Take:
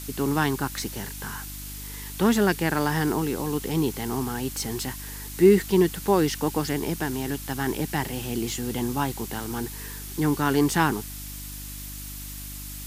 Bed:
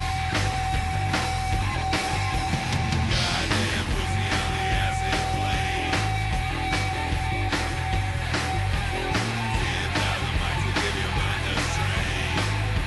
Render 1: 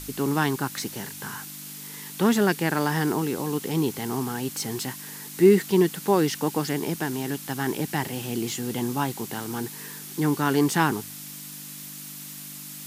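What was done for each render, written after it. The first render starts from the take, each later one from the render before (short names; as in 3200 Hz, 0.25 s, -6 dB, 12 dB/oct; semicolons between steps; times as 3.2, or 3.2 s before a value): de-hum 50 Hz, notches 2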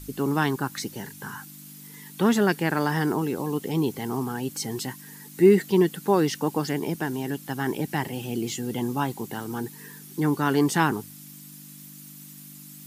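denoiser 10 dB, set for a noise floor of -40 dBFS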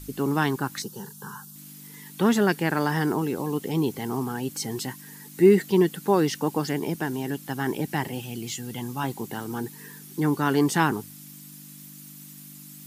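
0.82–1.56 fixed phaser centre 430 Hz, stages 8; 8.2–9.04 bell 390 Hz -9 dB 1.9 oct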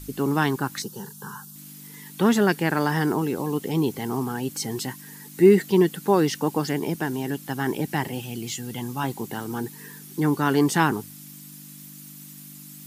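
gain +1.5 dB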